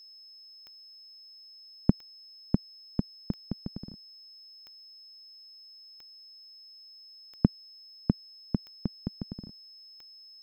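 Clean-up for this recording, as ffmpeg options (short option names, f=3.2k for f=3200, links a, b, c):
-af "adeclick=t=4,bandreject=f=5.2k:w=30"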